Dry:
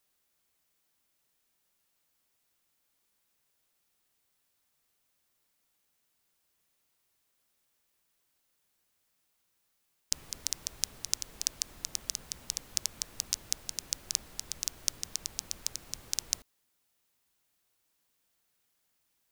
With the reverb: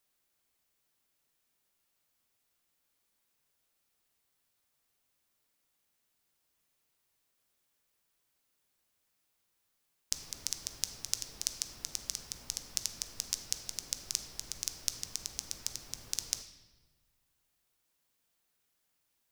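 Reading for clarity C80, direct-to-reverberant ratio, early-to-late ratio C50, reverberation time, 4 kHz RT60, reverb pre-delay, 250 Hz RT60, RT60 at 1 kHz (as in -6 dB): 12.0 dB, 8.0 dB, 10.0 dB, 1.2 s, 1.0 s, 7 ms, 1.6 s, 1.2 s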